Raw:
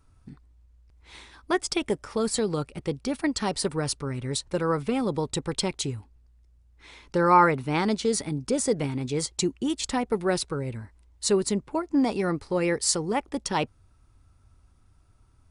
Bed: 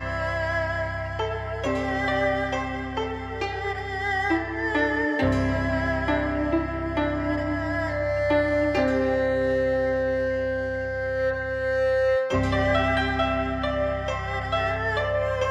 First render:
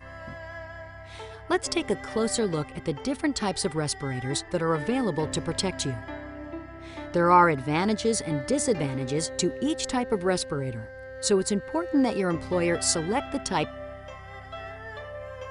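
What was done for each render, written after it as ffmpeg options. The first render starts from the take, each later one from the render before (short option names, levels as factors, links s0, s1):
-filter_complex "[1:a]volume=0.2[s0];[0:a][s0]amix=inputs=2:normalize=0"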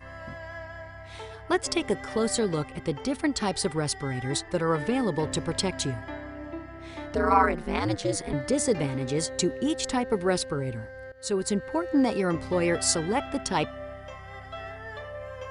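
-filter_complex "[0:a]asettb=1/sr,asplit=3[s0][s1][s2];[s0]atrim=end=7.154[s3];[s1]atrim=start=7.15:end=8.33,asetpts=PTS-STARTPTS,afade=t=in:d=0.004:c=qsin,afade=t=out:st=1.176:d=0.004:c=qsin,aeval=exprs='val(0)*sin(2*PI*100*n/s)':c=same[s4];[s2]atrim=start=8.326[s5];[s3][s4]acrossfade=d=0.004:c1=hsin:c2=qsin[s6];[s6][s5]acrossfade=d=0.004:c1=qsin:c2=hsin,asplit=2[s7][s8];[s7]atrim=end=11.12,asetpts=PTS-STARTPTS,afade=t=out:st=11.116:d=0.004:c=hsin:silence=0.141254[s9];[s8]atrim=start=11.12,asetpts=PTS-STARTPTS,afade=t=in:d=0.44:silence=0.141254[s10];[s9][s10]concat=n=2:v=0:a=1"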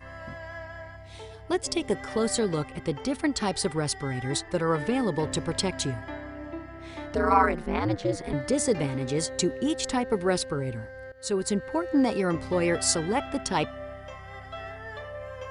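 -filter_complex "[0:a]asettb=1/sr,asplit=3[s0][s1][s2];[s0]atrim=end=0.964[s3];[s1]atrim=start=0.96:end=1.9,asetpts=PTS-STARTPTS,afade=t=in:d=0.004:c=qsin,afade=t=out:st=0.936:d=0.004:c=qsin,equalizer=f=1400:t=o:w=1.5:g=-8.5[s4];[s2]atrim=start=1.896[s5];[s3][s4]acrossfade=d=0.004:c1=hsin:c2=qsin[s6];[s6][s5]acrossfade=d=0.004:c1=qsin:c2=hsin,asettb=1/sr,asplit=3[s7][s8][s9];[s7]atrim=end=7.664[s10];[s8]atrim=start=7.66:end=8.24,asetpts=PTS-STARTPTS,afade=t=in:d=0.004:c=qsin,afade=t=out:st=0.576:d=0.004:c=qsin,aemphasis=mode=reproduction:type=75fm[s11];[s9]atrim=start=8.236[s12];[s10][s11]acrossfade=d=0.004:c1=hsin:c2=qsin[s13];[s13][s12]acrossfade=d=0.004:c1=qsin:c2=hsin"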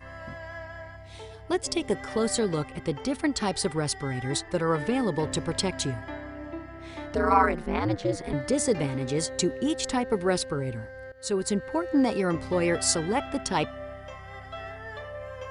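-af anull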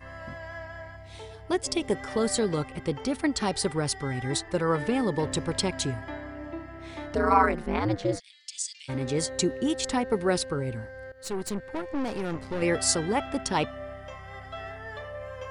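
-filter_complex "[0:a]asplit=3[s0][s1][s2];[s0]afade=t=out:st=8.18:d=0.02[s3];[s1]asuperpass=centerf=5000:order=8:qfactor=0.86,afade=t=in:st=8.18:d=0.02,afade=t=out:st=8.88:d=0.02[s4];[s2]afade=t=in:st=8.88:d=0.02[s5];[s3][s4][s5]amix=inputs=3:normalize=0,asettb=1/sr,asplit=3[s6][s7][s8];[s6]atrim=end=11.234[s9];[s7]atrim=start=11.23:end=12.62,asetpts=PTS-STARTPTS,afade=t=in:d=0.004:c=qsin,afade=t=out:st=1.386:d=0.004:c=qsin,aeval=exprs='(tanh(22.4*val(0)+0.75)-tanh(0.75))/22.4':c=same[s10];[s8]atrim=start=12.616[s11];[s9][s10]acrossfade=d=0.004:c1=hsin:c2=qsin[s12];[s12][s11]acrossfade=d=0.004:c1=qsin:c2=hsin"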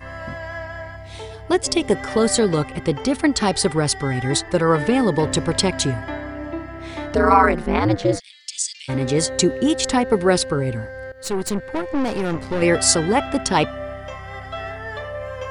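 -af "volume=2.66,alimiter=limit=0.794:level=0:latency=1"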